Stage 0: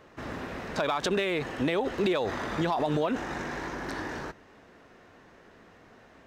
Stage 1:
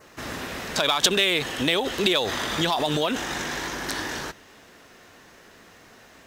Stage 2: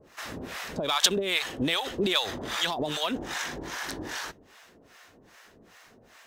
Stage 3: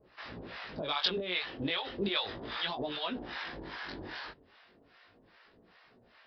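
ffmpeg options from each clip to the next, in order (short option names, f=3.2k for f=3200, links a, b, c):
-af "adynamicequalizer=threshold=0.00224:dfrequency=3300:dqfactor=3.3:tfrequency=3300:tqfactor=3.3:attack=5:release=100:ratio=0.375:range=3.5:mode=boostabove:tftype=bell,crystalizer=i=5:c=0,aeval=exprs='0.422*(abs(mod(val(0)/0.422+3,4)-2)-1)':c=same,volume=1.5dB"
-filter_complex "[0:a]acrossover=split=660[a][b];[a]aeval=exprs='val(0)*(1-1/2+1/2*cos(2*PI*2.5*n/s))':c=same[c];[b]aeval=exprs='val(0)*(1-1/2-1/2*cos(2*PI*2.5*n/s))':c=same[d];[c][d]amix=inputs=2:normalize=0"
-af "flanger=delay=16:depth=6.4:speed=0.34,aresample=11025,aresample=44100,volume=-3.5dB"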